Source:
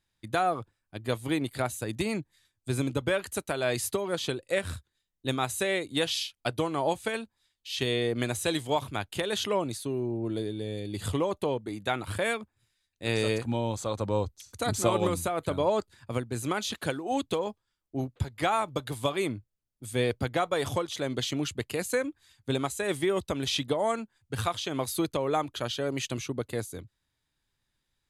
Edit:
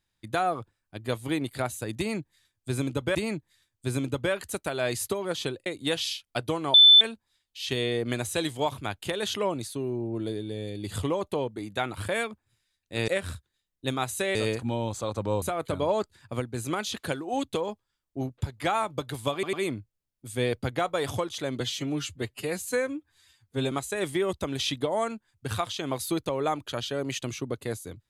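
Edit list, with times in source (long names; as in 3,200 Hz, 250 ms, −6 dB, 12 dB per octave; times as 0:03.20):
0:01.98–0:03.15: repeat, 2 plays
0:04.49–0:05.76: move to 0:13.18
0:06.84–0:07.11: beep over 3,520 Hz −10.5 dBFS
0:14.25–0:15.20: remove
0:19.11: stutter 0.10 s, 3 plays
0:21.18–0:22.59: time-stretch 1.5×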